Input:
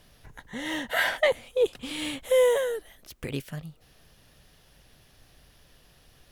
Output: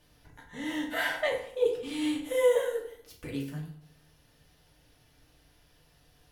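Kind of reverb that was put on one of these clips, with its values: FDN reverb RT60 0.62 s, low-frequency decay 1.05×, high-frequency decay 0.7×, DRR -3 dB; trim -9.5 dB

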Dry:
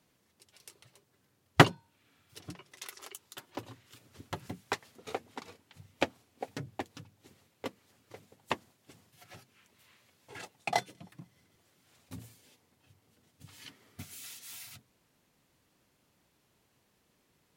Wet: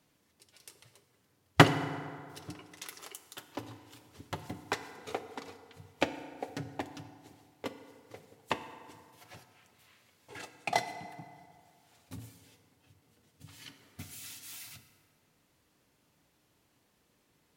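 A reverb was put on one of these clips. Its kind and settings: FDN reverb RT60 2.1 s, low-frequency decay 0.8×, high-frequency decay 0.55×, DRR 9 dB

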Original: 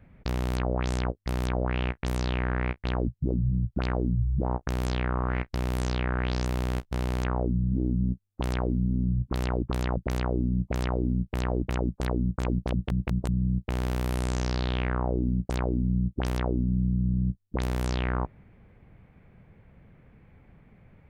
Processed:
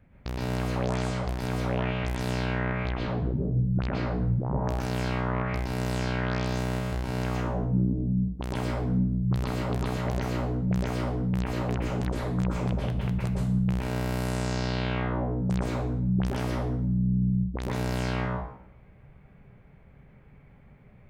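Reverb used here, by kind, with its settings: plate-style reverb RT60 0.66 s, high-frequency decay 0.85×, pre-delay 105 ms, DRR -4.5 dB; trim -4.5 dB

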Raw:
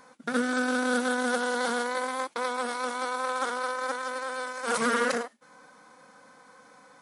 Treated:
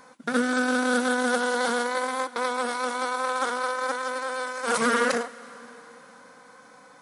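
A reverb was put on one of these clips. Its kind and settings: plate-style reverb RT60 4 s, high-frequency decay 1×, pre-delay 105 ms, DRR 18.5 dB; trim +3 dB

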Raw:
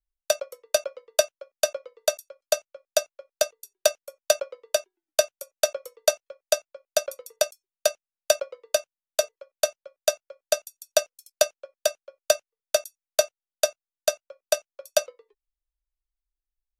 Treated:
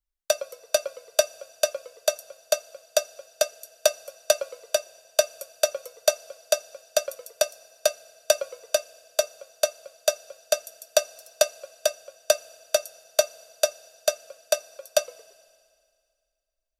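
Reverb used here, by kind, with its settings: FDN reverb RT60 2.2 s, low-frequency decay 1.05×, high-frequency decay 1×, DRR 18.5 dB

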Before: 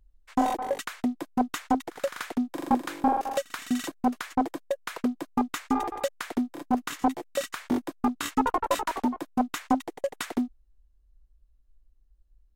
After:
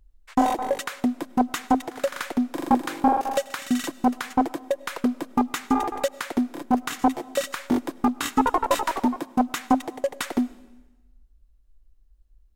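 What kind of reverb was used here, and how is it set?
algorithmic reverb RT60 1.1 s, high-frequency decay 1×, pre-delay 60 ms, DRR 19 dB; trim +4 dB

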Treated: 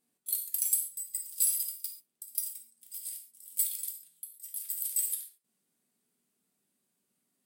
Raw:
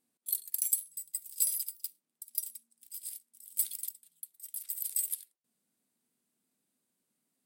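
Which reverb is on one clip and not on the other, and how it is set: gated-style reverb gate 160 ms falling, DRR 1.5 dB

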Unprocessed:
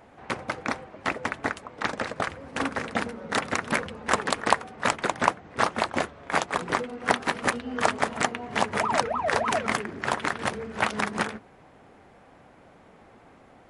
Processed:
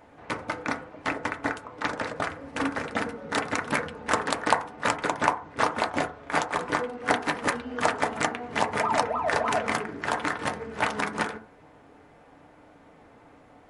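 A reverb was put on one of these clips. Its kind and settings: FDN reverb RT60 0.41 s, low-frequency decay 0.75×, high-frequency decay 0.25×, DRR 4.5 dB; trim -2 dB

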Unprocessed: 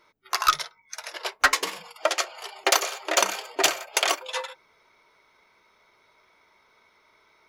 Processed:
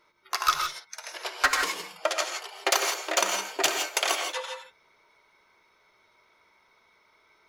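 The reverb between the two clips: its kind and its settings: gated-style reverb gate 190 ms rising, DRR 4 dB; trim -3.5 dB

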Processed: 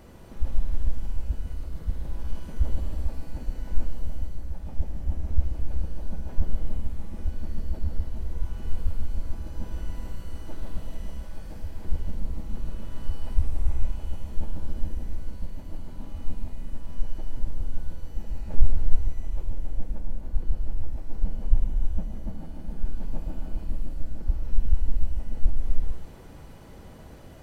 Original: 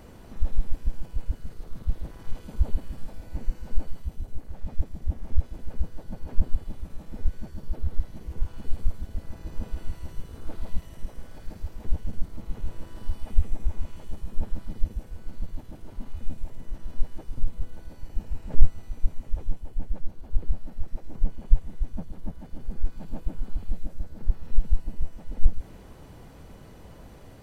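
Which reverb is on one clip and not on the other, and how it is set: gated-style reverb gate 480 ms flat, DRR 0 dB; trim -2 dB

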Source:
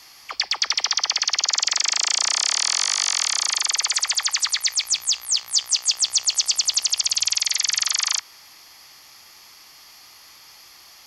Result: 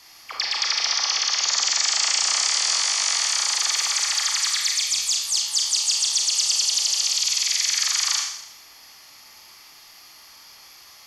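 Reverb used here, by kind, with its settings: Schroeder reverb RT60 0.78 s, combs from 27 ms, DRR -1 dB; trim -3.5 dB

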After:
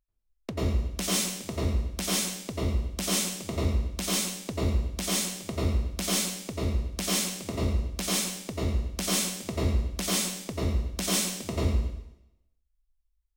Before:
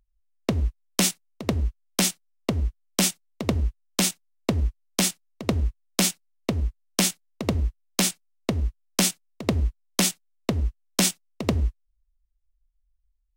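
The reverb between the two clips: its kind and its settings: plate-style reverb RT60 0.87 s, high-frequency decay 1×, pre-delay 80 ms, DRR -8.5 dB; trim -12 dB

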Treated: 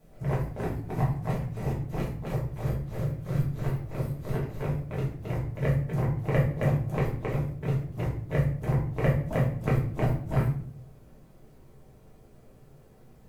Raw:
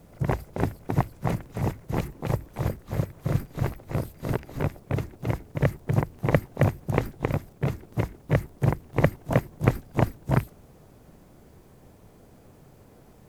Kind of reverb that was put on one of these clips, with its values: simulated room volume 70 m³, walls mixed, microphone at 1.5 m; trim -11.5 dB

